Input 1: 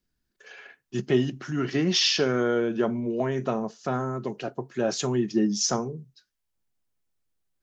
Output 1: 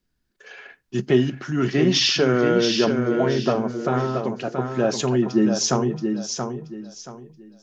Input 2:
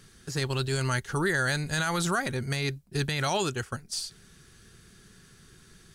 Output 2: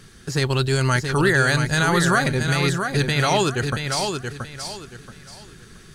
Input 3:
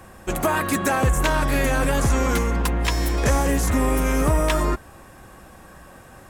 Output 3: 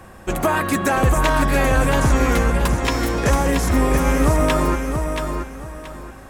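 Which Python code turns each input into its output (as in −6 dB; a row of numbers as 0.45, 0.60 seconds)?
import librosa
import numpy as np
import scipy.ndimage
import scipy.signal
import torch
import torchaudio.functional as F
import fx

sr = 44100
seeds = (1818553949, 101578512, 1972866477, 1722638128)

p1 = fx.high_shelf(x, sr, hz=5000.0, db=-4.5)
p2 = p1 + fx.echo_feedback(p1, sr, ms=678, feedback_pct=28, wet_db=-6.0, dry=0)
y = librosa.util.normalize(p2) * 10.0 ** (-6 / 20.0)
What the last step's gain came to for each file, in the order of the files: +4.5, +8.5, +2.5 decibels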